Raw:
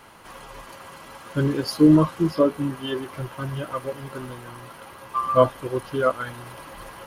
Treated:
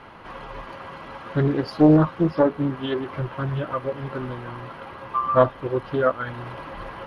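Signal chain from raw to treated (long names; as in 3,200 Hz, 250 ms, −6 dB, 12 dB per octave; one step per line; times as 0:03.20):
parametric band 9,900 Hz +7.5 dB 0.89 octaves
in parallel at 0 dB: downward compressor, threshold −31 dBFS, peak gain reduction 19.5 dB
on the sum: high-frequency loss of the air 310 metres
highs frequency-modulated by the lows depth 0.54 ms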